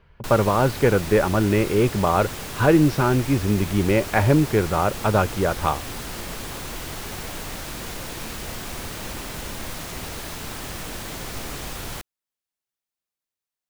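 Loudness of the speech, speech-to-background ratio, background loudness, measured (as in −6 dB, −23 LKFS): −20.5 LKFS, 12.0 dB, −32.5 LKFS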